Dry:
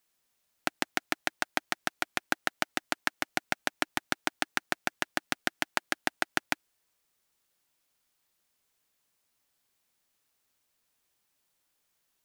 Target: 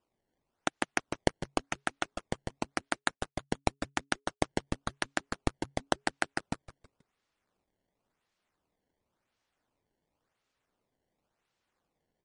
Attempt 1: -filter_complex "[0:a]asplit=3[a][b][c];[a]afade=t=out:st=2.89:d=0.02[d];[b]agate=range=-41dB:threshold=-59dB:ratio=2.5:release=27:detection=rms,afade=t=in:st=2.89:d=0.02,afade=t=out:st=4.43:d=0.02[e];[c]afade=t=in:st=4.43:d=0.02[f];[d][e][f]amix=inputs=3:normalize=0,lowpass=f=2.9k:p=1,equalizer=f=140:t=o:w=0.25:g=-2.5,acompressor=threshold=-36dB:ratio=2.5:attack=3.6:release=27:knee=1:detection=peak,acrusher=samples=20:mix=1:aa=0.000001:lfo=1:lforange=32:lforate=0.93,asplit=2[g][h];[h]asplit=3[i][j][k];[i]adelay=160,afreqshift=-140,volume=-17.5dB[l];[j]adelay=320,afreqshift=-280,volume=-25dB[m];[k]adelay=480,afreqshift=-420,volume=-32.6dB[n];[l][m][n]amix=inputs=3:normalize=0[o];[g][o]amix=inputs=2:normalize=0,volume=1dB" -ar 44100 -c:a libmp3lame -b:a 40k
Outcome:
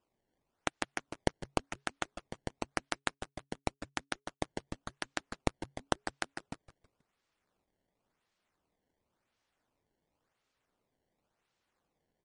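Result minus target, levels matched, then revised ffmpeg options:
compressor: peak gain reduction +10.5 dB
-filter_complex "[0:a]asplit=3[a][b][c];[a]afade=t=out:st=2.89:d=0.02[d];[b]agate=range=-41dB:threshold=-59dB:ratio=2.5:release=27:detection=rms,afade=t=in:st=2.89:d=0.02,afade=t=out:st=4.43:d=0.02[e];[c]afade=t=in:st=4.43:d=0.02[f];[d][e][f]amix=inputs=3:normalize=0,lowpass=f=2.9k:p=1,equalizer=f=140:t=o:w=0.25:g=-2.5,acrusher=samples=20:mix=1:aa=0.000001:lfo=1:lforange=32:lforate=0.93,asplit=2[g][h];[h]asplit=3[i][j][k];[i]adelay=160,afreqshift=-140,volume=-17.5dB[l];[j]adelay=320,afreqshift=-280,volume=-25dB[m];[k]adelay=480,afreqshift=-420,volume=-32.6dB[n];[l][m][n]amix=inputs=3:normalize=0[o];[g][o]amix=inputs=2:normalize=0,volume=1dB" -ar 44100 -c:a libmp3lame -b:a 40k

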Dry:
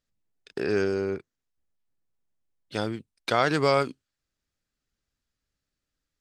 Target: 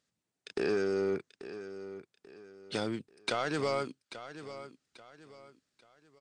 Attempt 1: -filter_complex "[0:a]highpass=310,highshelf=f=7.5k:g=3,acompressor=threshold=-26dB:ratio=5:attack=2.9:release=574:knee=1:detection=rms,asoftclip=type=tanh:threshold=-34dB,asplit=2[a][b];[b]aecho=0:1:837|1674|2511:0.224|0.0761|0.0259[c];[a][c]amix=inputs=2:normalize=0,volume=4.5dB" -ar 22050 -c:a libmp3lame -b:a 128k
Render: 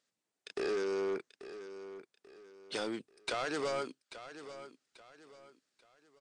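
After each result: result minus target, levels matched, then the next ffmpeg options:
125 Hz band -8.5 dB; soft clip: distortion +7 dB
-filter_complex "[0:a]highpass=130,highshelf=f=7.5k:g=3,acompressor=threshold=-26dB:ratio=5:attack=2.9:release=574:knee=1:detection=rms,asoftclip=type=tanh:threshold=-34dB,asplit=2[a][b];[b]aecho=0:1:837|1674|2511:0.224|0.0761|0.0259[c];[a][c]amix=inputs=2:normalize=0,volume=4.5dB" -ar 22050 -c:a libmp3lame -b:a 128k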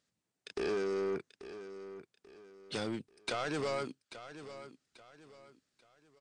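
soft clip: distortion +7 dB
-filter_complex "[0:a]highpass=130,highshelf=f=7.5k:g=3,acompressor=threshold=-26dB:ratio=5:attack=2.9:release=574:knee=1:detection=rms,asoftclip=type=tanh:threshold=-26.5dB,asplit=2[a][b];[b]aecho=0:1:837|1674|2511:0.224|0.0761|0.0259[c];[a][c]amix=inputs=2:normalize=0,volume=4.5dB" -ar 22050 -c:a libmp3lame -b:a 128k

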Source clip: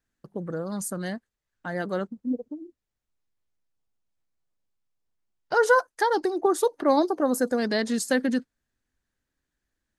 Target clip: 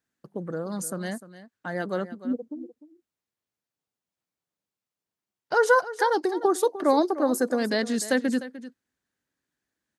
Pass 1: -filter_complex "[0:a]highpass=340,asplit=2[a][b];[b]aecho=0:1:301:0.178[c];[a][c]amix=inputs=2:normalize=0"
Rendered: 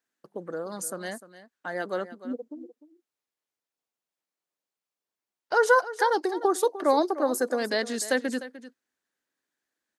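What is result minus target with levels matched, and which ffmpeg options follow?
125 Hz band -8.5 dB
-filter_complex "[0:a]highpass=130,asplit=2[a][b];[b]aecho=0:1:301:0.178[c];[a][c]amix=inputs=2:normalize=0"

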